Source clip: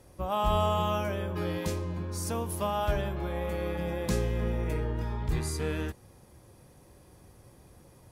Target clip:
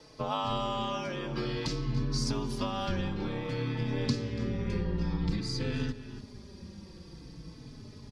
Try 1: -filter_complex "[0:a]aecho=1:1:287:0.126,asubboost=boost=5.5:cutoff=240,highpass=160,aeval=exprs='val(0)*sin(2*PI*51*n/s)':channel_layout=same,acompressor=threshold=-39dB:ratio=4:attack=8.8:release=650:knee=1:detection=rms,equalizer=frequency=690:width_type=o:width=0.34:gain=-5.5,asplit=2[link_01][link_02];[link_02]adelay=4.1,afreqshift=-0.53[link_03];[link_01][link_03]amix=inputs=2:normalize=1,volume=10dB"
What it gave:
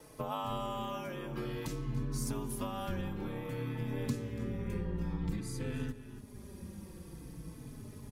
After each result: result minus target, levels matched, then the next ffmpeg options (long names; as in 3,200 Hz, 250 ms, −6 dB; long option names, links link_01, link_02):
4,000 Hz band −5.0 dB; downward compressor: peak gain reduction +5 dB
-filter_complex "[0:a]aecho=1:1:287:0.126,asubboost=boost=5.5:cutoff=240,highpass=160,aeval=exprs='val(0)*sin(2*PI*51*n/s)':channel_layout=same,acompressor=threshold=-39dB:ratio=4:attack=8.8:release=650:knee=1:detection=rms,lowpass=frequency=4800:width_type=q:width=3.8,equalizer=frequency=690:width_type=o:width=0.34:gain=-5.5,asplit=2[link_01][link_02];[link_02]adelay=4.1,afreqshift=-0.53[link_03];[link_01][link_03]amix=inputs=2:normalize=1,volume=10dB"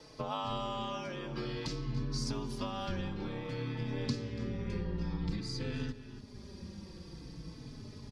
downward compressor: peak gain reduction +5 dB
-filter_complex "[0:a]aecho=1:1:287:0.126,asubboost=boost=5.5:cutoff=240,highpass=160,aeval=exprs='val(0)*sin(2*PI*51*n/s)':channel_layout=same,acompressor=threshold=-32.5dB:ratio=4:attack=8.8:release=650:knee=1:detection=rms,lowpass=frequency=4800:width_type=q:width=3.8,equalizer=frequency=690:width_type=o:width=0.34:gain=-5.5,asplit=2[link_01][link_02];[link_02]adelay=4.1,afreqshift=-0.53[link_03];[link_01][link_03]amix=inputs=2:normalize=1,volume=10dB"